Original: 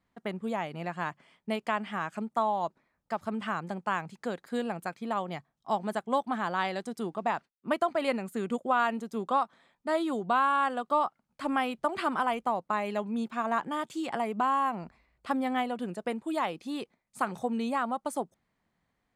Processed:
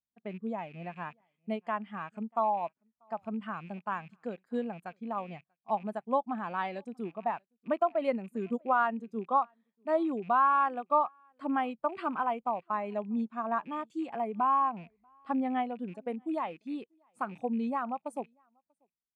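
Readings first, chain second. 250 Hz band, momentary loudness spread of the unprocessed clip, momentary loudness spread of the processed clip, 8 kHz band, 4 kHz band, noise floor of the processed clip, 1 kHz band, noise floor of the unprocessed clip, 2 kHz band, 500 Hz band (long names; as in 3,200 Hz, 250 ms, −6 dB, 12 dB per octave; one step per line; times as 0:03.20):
−1.5 dB, 10 LU, 13 LU, below −15 dB, below −10 dB, below −85 dBFS, −1.0 dB, −79 dBFS, −5.5 dB, −1.5 dB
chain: loose part that buzzes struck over −51 dBFS, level −32 dBFS
single-tap delay 639 ms −23.5 dB
every bin expanded away from the loudest bin 1.5 to 1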